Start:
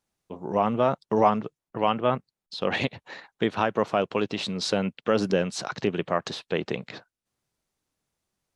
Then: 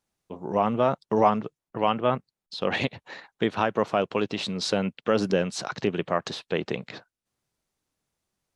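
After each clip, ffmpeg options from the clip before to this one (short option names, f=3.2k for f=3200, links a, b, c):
-af anull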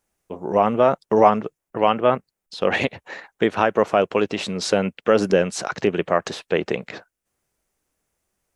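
-af "equalizer=f=125:t=o:w=1:g=-8,equalizer=f=250:t=o:w=1:g=-4,equalizer=f=1k:t=o:w=1:g=-4,equalizer=f=4k:t=o:w=1:g=-9,volume=9dB"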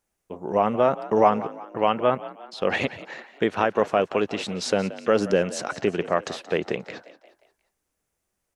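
-filter_complex "[0:a]asplit=5[a][b][c][d][e];[b]adelay=177,afreqshift=51,volume=-16.5dB[f];[c]adelay=354,afreqshift=102,volume=-22.9dB[g];[d]adelay=531,afreqshift=153,volume=-29.3dB[h];[e]adelay=708,afreqshift=204,volume=-35.6dB[i];[a][f][g][h][i]amix=inputs=5:normalize=0,volume=-3.5dB"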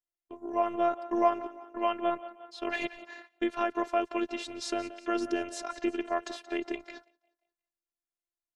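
-af "afftfilt=real='hypot(re,im)*cos(PI*b)':imag='0':win_size=512:overlap=0.75,agate=range=-15dB:threshold=-46dB:ratio=16:detection=peak,volume=-4dB"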